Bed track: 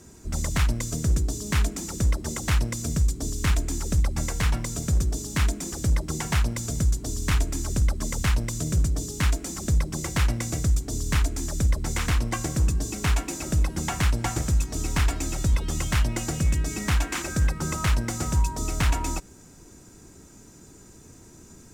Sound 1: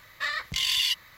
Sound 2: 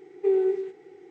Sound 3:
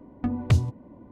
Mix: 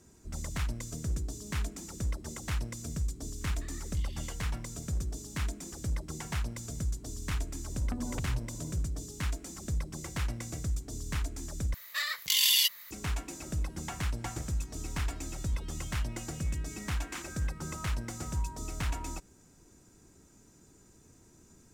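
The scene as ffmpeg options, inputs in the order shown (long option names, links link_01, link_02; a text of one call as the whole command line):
ffmpeg -i bed.wav -i cue0.wav -i cue1.wav -i cue2.wav -filter_complex "[1:a]asplit=2[link_01][link_02];[0:a]volume=-10.5dB[link_03];[link_01]acompressor=threshold=-38dB:ratio=6:attack=3.2:release=140:knee=1:detection=peak[link_04];[3:a]acompressor=threshold=-33dB:ratio=6:attack=3.2:release=140:knee=1:detection=peak[link_05];[link_02]aemphasis=mode=production:type=riaa[link_06];[link_03]asplit=2[link_07][link_08];[link_07]atrim=end=11.744[link_09];[link_06]atrim=end=1.17,asetpts=PTS-STARTPTS,volume=-6.5dB[link_10];[link_08]atrim=start=12.906[link_11];[link_04]atrim=end=1.17,asetpts=PTS-STARTPTS,volume=-14dB,afade=type=in:duration=0.004:curve=hsin,afade=type=out:start_time=1.166:duration=0.004:curve=hsin,adelay=150381S[link_12];[link_05]atrim=end=1.11,asetpts=PTS-STARTPTS,volume=-1dB,afade=type=in:duration=0.1,afade=type=out:start_time=1.01:duration=0.1,adelay=7680[link_13];[link_09][link_10]acrossfade=duration=0.004:curve1=hsin:curve2=hsin[link_14];[link_14][link_11]acrossfade=duration=0.004:curve1=hsin:curve2=hsin[link_15];[link_15][link_12][link_13]amix=inputs=3:normalize=0" out.wav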